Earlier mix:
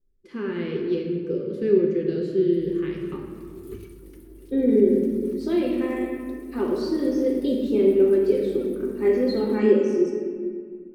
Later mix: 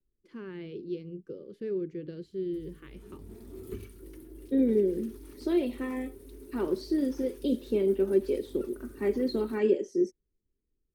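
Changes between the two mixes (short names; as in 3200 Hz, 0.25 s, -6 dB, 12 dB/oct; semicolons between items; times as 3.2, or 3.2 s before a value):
first voice -8.0 dB; reverb: off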